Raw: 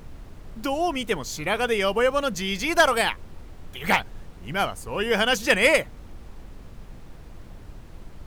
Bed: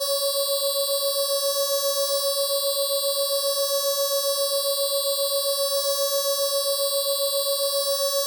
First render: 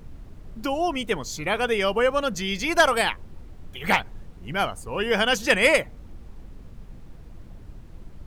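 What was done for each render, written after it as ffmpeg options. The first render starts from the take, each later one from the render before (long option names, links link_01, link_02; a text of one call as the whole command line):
ffmpeg -i in.wav -af "afftdn=noise_reduction=6:noise_floor=-44" out.wav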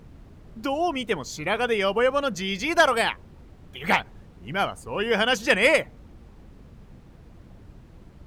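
ffmpeg -i in.wav -af "highpass=frequency=71:poles=1,highshelf=frequency=6400:gain=-5.5" out.wav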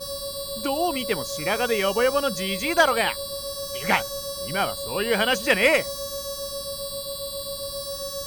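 ffmpeg -i in.wav -i bed.wav -filter_complex "[1:a]volume=-8.5dB[link_01];[0:a][link_01]amix=inputs=2:normalize=0" out.wav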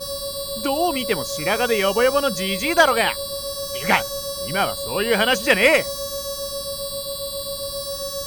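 ffmpeg -i in.wav -af "volume=3.5dB" out.wav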